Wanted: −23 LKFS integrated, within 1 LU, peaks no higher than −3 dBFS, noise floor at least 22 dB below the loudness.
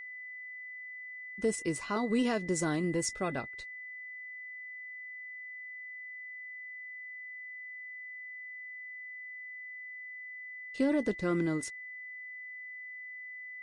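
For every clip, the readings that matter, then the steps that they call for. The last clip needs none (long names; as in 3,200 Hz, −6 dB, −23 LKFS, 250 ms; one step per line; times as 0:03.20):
interfering tone 2,000 Hz; level of the tone −42 dBFS; integrated loudness −37.0 LKFS; sample peak −19.5 dBFS; target loudness −23.0 LKFS
→ notch filter 2,000 Hz, Q 30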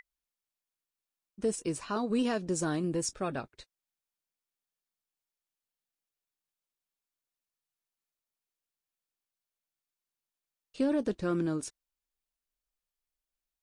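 interfering tone none found; integrated loudness −32.5 LKFS; sample peak −20.0 dBFS; target loudness −23.0 LKFS
→ level +9.5 dB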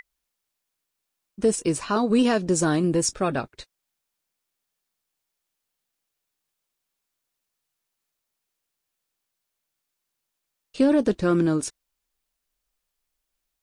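integrated loudness −23.0 LKFS; sample peak −10.5 dBFS; background noise floor −82 dBFS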